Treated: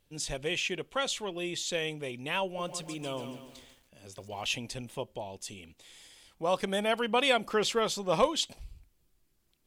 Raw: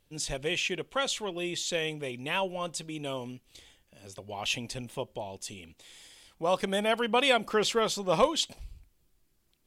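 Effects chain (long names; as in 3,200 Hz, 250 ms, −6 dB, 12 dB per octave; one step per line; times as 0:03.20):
0:02.44–0:04.45: feedback echo at a low word length 141 ms, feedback 55%, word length 9 bits, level −9 dB
level −1.5 dB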